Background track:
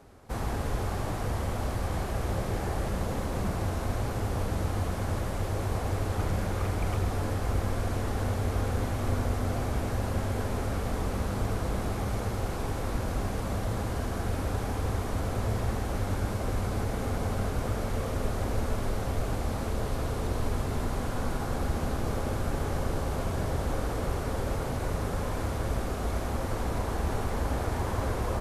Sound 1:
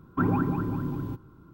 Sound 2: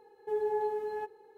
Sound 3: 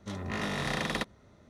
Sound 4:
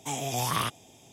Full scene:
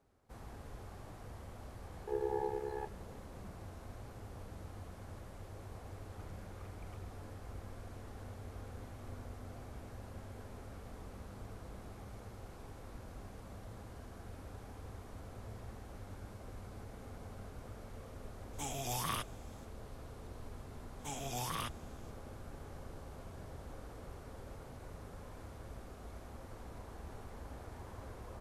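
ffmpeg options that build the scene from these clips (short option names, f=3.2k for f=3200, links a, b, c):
-filter_complex "[4:a]asplit=2[a][b];[0:a]volume=-19dB[c];[2:a]tremolo=f=68:d=0.974[d];[a]highshelf=f=9.4k:g=4.5[e];[b]alimiter=limit=-17.5dB:level=0:latency=1:release=32[f];[d]atrim=end=1.37,asetpts=PTS-STARTPTS,volume=-1.5dB,afade=t=in:d=0.004:c=hsin,afade=t=out:st=1.366:d=0.004:c=hsin,adelay=1800[g];[e]atrim=end=1.12,asetpts=PTS-STARTPTS,volume=-9.5dB,afade=t=in:d=0.004:c=hsin,afade=t=out:st=1.116:d=0.004:c=hsin,adelay=18530[h];[f]atrim=end=1.12,asetpts=PTS-STARTPTS,volume=-10.5dB,afade=t=in:d=0.004:c=hsin,afade=t=out:st=1.116:d=0.004:c=hsin,adelay=20990[i];[c][g][h][i]amix=inputs=4:normalize=0"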